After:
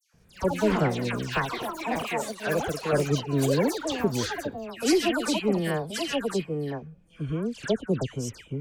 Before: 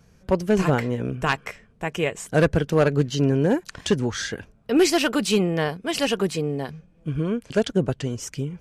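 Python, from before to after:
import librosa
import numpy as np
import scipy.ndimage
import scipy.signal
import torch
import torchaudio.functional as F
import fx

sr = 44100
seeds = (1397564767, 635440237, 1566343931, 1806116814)

y = fx.echo_pitch(x, sr, ms=174, semitones=7, count=3, db_per_echo=-6.0)
y = fx.dispersion(y, sr, late='lows', ms=138.0, hz=2000.0)
y = fx.low_shelf(y, sr, hz=360.0, db=-10.0, at=(1.99, 2.93))
y = y * 10.0 ** (-4.5 / 20.0)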